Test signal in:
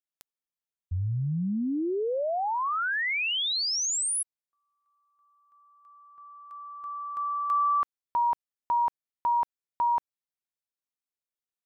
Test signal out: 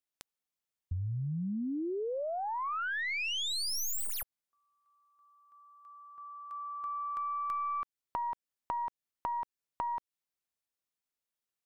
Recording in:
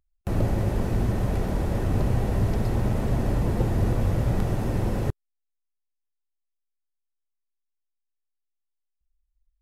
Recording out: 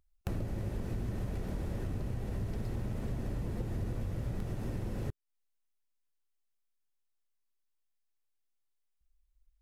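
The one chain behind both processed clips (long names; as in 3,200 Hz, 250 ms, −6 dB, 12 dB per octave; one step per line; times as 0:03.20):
stylus tracing distortion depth 0.049 ms
dynamic equaliser 830 Hz, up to −5 dB, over −39 dBFS, Q 1.1
downward compressor 6 to 1, threshold −35 dBFS
level +1.5 dB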